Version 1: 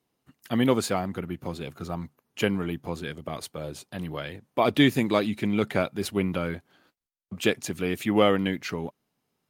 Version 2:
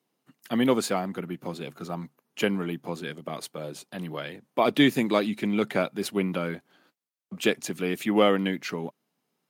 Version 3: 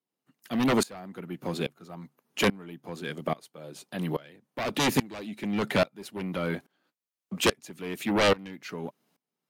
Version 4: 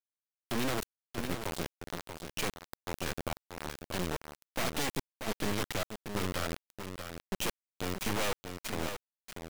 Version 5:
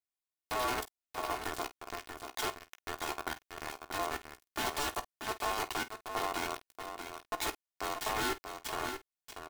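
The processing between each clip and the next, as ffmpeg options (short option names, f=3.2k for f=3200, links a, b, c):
-af "highpass=f=150:w=0.5412,highpass=f=150:w=1.3066"
-af "aeval=exprs='0.422*sin(PI/2*3.98*val(0)/0.422)':c=same,aeval=exprs='val(0)*pow(10,-24*if(lt(mod(-1.2*n/s,1),2*abs(-1.2)/1000),1-mod(-1.2*n/s,1)/(2*abs(-1.2)/1000),(mod(-1.2*n/s,1)-2*abs(-1.2)/1000)/(1-2*abs(-1.2)/1000))/20)':c=same,volume=-8dB"
-af "acompressor=threshold=-34dB:ratio=12,acrusher=bits=3:dc=4:mix=0:aa=0.000001,aecho=1:1:635:0.422,volume=4dB"
-af "aeval=exprs='val(0)*sin(2*PI*870*n/s)':c=same,aecho=1:1:2.8:0.54,aecho=1:1:16|49:0.282|0.168"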